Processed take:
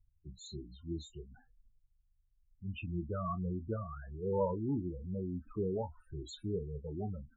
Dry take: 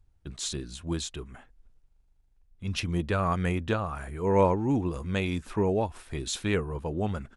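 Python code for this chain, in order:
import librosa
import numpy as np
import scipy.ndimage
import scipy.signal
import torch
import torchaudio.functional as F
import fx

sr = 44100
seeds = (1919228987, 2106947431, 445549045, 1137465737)

y = fx.spec_topn(x, sr, count=8)
y = fx.doubler(y, sr, ms=27.0, db=-12.5)
y = y * 10.0 ** (-8.0 / 20.0)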